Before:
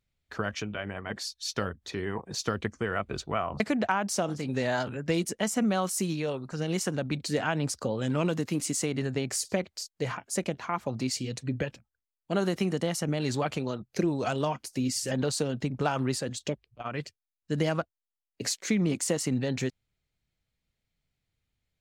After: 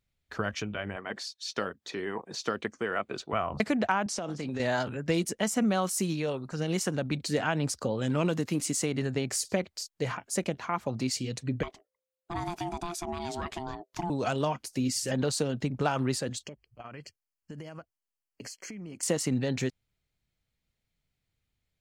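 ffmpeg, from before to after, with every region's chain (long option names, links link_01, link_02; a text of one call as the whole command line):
ffmpeg -i in.wav -filter_complex "[0:a]asettb=1/sr,asplit=3[link_01][link_02][link_03];[link_01]atrim=end=0.964[link_04];[link_02]atrim=start=0.96:end=3.33,asetpts=PTS-STARTPTS,afade=type=in:duration=0.004:curve=qsin,afade=type=out:start_time=2.366:duration=0.004:curve=qsin,highpass=230,acrossover=split=4900[link_05][link_06];[link_06]acompressor=threshold=-42dB:ratio=4:attack=1:release=60[link_07];[link_05][link_07]amix=inputs=2:normalize=0,equalizer=frequency=12000:width=2.6:gain=-7[link_08];[link_03]atrim=start=3.326[link_09];[link_04][link_08]acrossfade=duration=0.004:curve1=hsin:curve2=qsin[link_10];[link_10][link_09]acrossfade=duration=0.004:curve1=qsin:curve2=hsin,asettb=1/sr,asplit=3[link_11][link_12][link_13];[link_11]atrim=end=4.064[link_14];[link_12]atrim=start=4.06:end=4.6,asetpts=PTS-STARTPTS,afade=type=in:duration=0.004:curve=qsin,afade=type=out:start_time=0.536:duration=0.004:curve=qsin,highpass=130,lowpass=7700,acompressor=threshold=-29dB:ratio=10:attack=3.2:release=140:knee=1:detection=peak[link_15];[link_13]atrim=start=4.596[link_16];[link_14][link_15]acrossfade=duration=0.004:curve1=hsin:curve2=qsin[link_17];[link_17][link_16]acrossfade=duration=0.004:curve1=qsin:curve2=hsin,asettb=1/sr,asplit=3[link_18][link_19][link_20];[link_18]atrim=end=11.634[link_21];[link_19]atrim=start=11.63:end=14.1,asetpts=PTS-STARTPTS,afade=type=in:duration=0.004:curve=qsin,afade=type=out:start_time=2.466:duration=0.004:curve=qsin,acompressor=threshold=-33dB:ratio=1.5:attack=3.2:release=140:knee=1:detection=peak,aeval=exprs='val(0)*sin(2*PI*520*n/s)':channel_layout=same[link_22];[link_20]atrim=start=14.096[link_23];[link_21][link_22]acrossfade=duration=0.004:curve1=hsin:curve2=qsin[link_24];[link_24][link_23]acrossfade=duration=0.004:curve1=qsin:curve2=hsin,asettb=1/sr,asplit=3[link_25][link_26][link_27];[link_25]atrim=end=16.434[link_28];[link_26]atrim=start=16.43:end=19.03,asetpts=PTS-STARTPTS,afade=type=in:duration=0.004:curve=qsin,afade=type=out:start_time=2.596:duration=0.004:curve=qsin,acompressor=threshold=-39dB:ratio=8:attack=3.2:release=140:knee=1:detection=peak,asuperstop=centerf=3700:order=20:qfactor=4.3[link_29];[link_27]atrim=start=19.026[link_30];[link_28][link_29]acrossfade=duration=0.004:curve1=hsin:curve2=qsin[link_31];[link_31][link_30]acrossfade=duration=0.004:curve1=qsin:curve2=hsin" out.wav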